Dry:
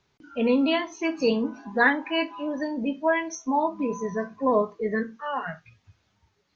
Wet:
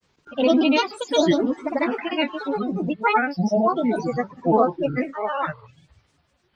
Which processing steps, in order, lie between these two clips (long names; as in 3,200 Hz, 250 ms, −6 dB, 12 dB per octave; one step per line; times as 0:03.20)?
granular cloud, pitch spread up and down by 7 semitones
level +5.5 dB